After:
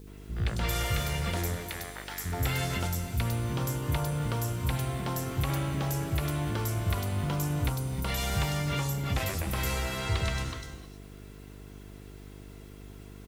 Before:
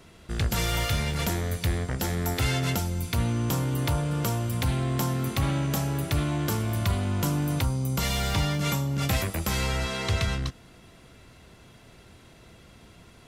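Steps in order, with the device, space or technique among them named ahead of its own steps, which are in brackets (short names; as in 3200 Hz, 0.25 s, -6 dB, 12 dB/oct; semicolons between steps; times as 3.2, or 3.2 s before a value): 1.59–2.24 HPF 470 Hz -> 1400 Hz 12 dB/oct; three bands offset in time lows, mids, highs 70/170 ms, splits 230/4600 Hz; non-linear reverb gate 0.34 s rising, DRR 10 dB; video cassette with head-switching buzz (buzz 50 Hz, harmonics 9, -44 dBFS -4 dB/oct; white noise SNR 32 dB); gain -3 dB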